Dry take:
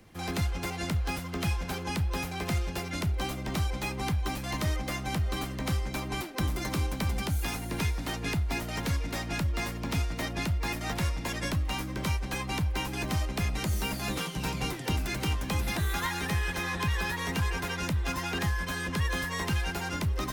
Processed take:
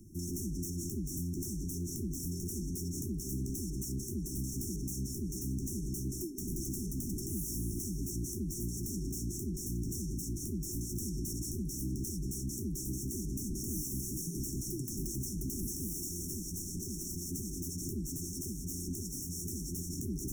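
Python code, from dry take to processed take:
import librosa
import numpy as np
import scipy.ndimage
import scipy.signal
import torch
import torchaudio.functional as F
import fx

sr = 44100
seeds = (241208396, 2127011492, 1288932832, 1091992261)

y = 10.0 ** (-33.5 / 20.0) * (np.abs((x / 10.0 ** (-33.5 / 20.0) + 3.0) % 4.0 - 2.0) - 1.0)
y = fx.brickwall_bandstop(y, sr, low_hz=400.0, high_hz=5400.0)
y = F.gain(torch.from_numpy(y), 3.5).numpy()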